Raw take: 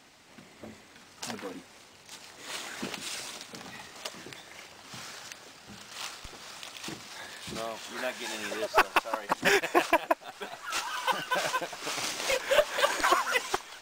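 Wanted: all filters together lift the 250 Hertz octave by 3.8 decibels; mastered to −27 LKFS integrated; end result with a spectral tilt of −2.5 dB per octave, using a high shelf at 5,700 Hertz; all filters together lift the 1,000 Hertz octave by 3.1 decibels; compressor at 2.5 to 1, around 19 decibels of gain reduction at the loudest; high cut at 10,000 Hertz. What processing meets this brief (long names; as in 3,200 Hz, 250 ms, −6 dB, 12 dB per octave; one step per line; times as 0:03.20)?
low-pass filter 10,000 Hz
parametric band 250 Hz +5.5 dB
parametric band 1,000 Hz +3.5 dB
high-shelf EQ 5,700 Hz −4 dB
downward compressor 2.5 to 1, threshold −46 dBFS
level +17.5 dB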